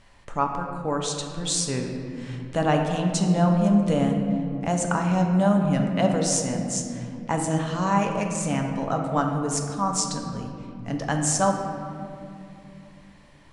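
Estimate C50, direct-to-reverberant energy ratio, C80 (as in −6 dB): 4.0 dB, 2.0 dB, 5.0 dB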